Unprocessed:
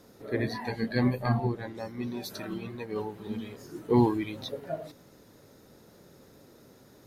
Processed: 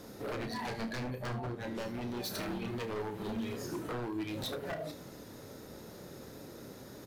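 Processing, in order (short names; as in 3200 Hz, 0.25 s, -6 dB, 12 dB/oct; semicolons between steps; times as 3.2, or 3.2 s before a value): compressor 8:1, threshold -38 dBFS, peak gain reduction 21 dB; wavefolder -38.5 dBFS; early reflections 31 ms -9 dB, 75 ms -15 dB; gain +6 dB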